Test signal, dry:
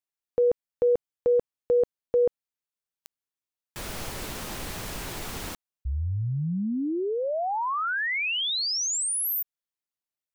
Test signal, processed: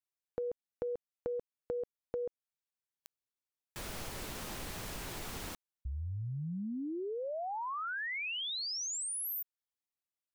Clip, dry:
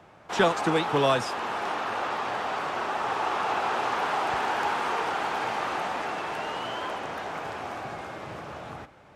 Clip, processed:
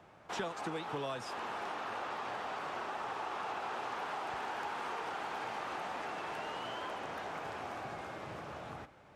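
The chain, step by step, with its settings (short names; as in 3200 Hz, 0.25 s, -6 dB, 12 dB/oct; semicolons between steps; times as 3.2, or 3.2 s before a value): compressor 4:1, threshold -31 dBFS; gain -6 dB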